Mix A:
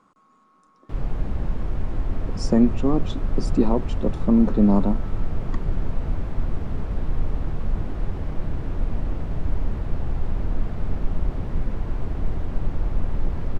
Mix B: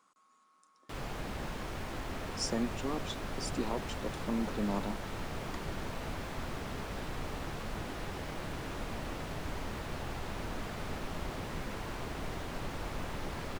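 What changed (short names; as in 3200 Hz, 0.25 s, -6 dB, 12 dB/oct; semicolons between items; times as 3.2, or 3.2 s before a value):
speech -9.0 dB; master: add tilt +4 dB/oct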